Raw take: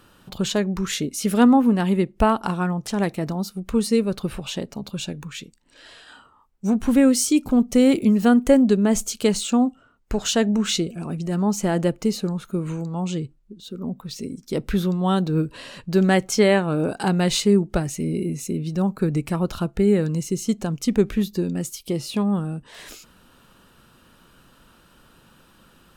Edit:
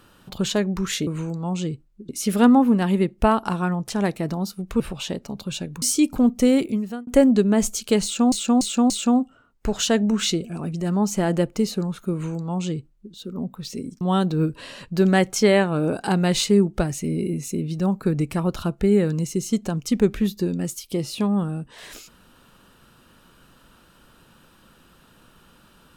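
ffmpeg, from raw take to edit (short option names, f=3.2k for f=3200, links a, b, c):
-filter_complex "[0:a]asplit=10[a][b][c][d][e][f][g][h][i][j];[a]atrim=end=1.072[k];[b]atrim=start=12.578:end=13.602[l];[c]atrim=start=1.068:end=3.782[m];[d]atrim=start=4.268:end=5.292[n];[e]atrim=start=7.148:end=8.4,asetpts=PTS-STARTPTS,afade=t=out:st=0.582:d=0.67[o];[f]atrim=start=8.4:end=9.652,asetpts=PTS-STARTPTS,afade=t=in:d=0.004:c=hsin[p];[g]atrim=start=9.358:end=9.652[q];[h]atrim=start=9.358:end=9.652[r];[i]atrim=start=9.358:end=14.472[s];[j]atrim=start=14.968[t];[k][l]acrossfade=d=0.004:c1=hsin:c2=hsin[u];[u][m]acrossfade=d=0.004:c1=hsin:c2=hsin[v];[v][n]acrossfade=d=0.004:c1=hsin:c2=hsin[w];[o][p]concat=n=2:v=0:a=1[x];[w][x]acrossfade=d=0.004:c1=hsin:c2=hsin[y];[y][q]acrossfade=d=0.004:c1=hsin:c2=hsin[z];[z][r]acrossfade=d=0.004:c1=hsin:c2=hsin[aa];[aa][s]acrossfade=d=0.004:c1=hsin:c2=hsin[ab];[ab][t]acrossfade=d=0.004:c1=hsin:c2=hsin"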